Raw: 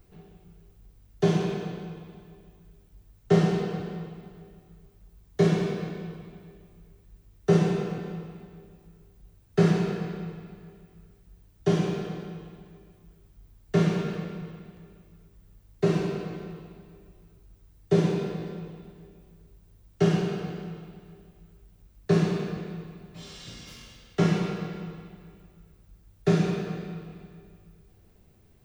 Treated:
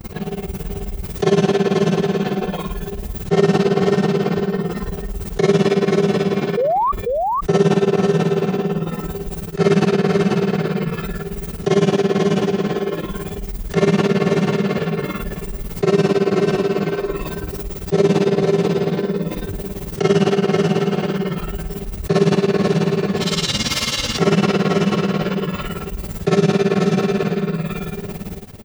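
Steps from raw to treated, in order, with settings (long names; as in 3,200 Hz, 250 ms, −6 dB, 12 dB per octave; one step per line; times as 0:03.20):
mains-hum notches 60/120/180/240/300/360/420/480 Hz
noise gate −55 dBFS, range −26 dB
high-pass filter 57 Hz 6 dB per octave
notch filter 1,600 Hz, Q 19
four-comb reverb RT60 0.32 s, combs from 29 ms, DRR −8.5 dB
amplitude tremolo 18 Hz, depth 93%
sound drawn into the spectrogram rise, 0:06.57–0:06.92, 450–1,200 Hz −30 dBFS
on a send: single-tap delay 489 ms −8 dB
on the sum: noise reduction from a noise print of the clip's start 9 dB
envelope flattener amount 70%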